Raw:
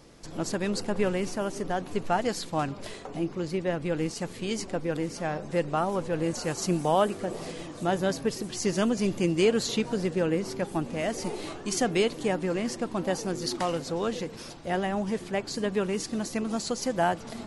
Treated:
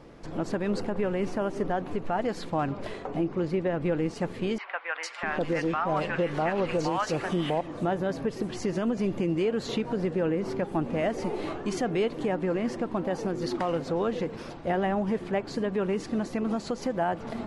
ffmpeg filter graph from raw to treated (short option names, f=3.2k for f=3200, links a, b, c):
-filter_complex "[0:a]asettb=1/sr,asplit=3[a][b][c];[a]atrim=end=4.584[d];[b]atrim=start=4.58:end=7.61,asetpts=PTS-STARTPTS,afade=t=in:d=0.004:c=qsin,afade=t=out:st=3.026:d=0.004:c=qsin,equalizer=f=2.8k:w=0.4:g=11.5,acrossover=split=820|2900[e][f][g];[g]adelay=450[h];[e]adelay=650[i];[i][f][h]amix=inputs=3:normalize=0,atrim=end_sample=133623[j];[c]atrim=start=7.606[k];[d][j]acrossfade=d=0.004:c1=hsin:c2=qsin[l];[l][k]acrossfade=d=0.004:c1=qsin:c2=hsin,highshelf=f=3.3k:g=-11.5,alimiter=limit=-23.5dB:level=0:latency=1:release=136,bass=f=250:g=-2,treble=f=4k:g=-7,volume=5.5dB"